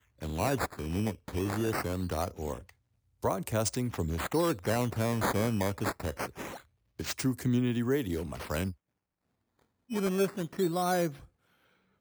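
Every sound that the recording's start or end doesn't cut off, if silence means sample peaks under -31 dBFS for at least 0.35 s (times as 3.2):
3.24–6.47
7–8.7
9.92–11.09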